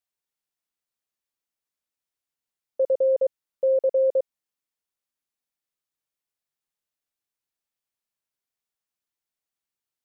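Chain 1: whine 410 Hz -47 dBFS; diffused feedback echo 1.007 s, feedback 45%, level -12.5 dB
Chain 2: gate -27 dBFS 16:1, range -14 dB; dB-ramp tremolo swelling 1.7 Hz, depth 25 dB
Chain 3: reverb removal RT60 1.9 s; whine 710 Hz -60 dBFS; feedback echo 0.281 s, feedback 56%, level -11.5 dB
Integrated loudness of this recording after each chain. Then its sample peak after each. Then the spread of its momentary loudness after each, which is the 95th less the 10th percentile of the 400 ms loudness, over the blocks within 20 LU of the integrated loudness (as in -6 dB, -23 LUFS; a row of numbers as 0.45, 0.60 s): -26.0, -30.5, -26.0 LUFS; -14.5, -16.5, -15.5 dBFS; 20, 16, 19 LU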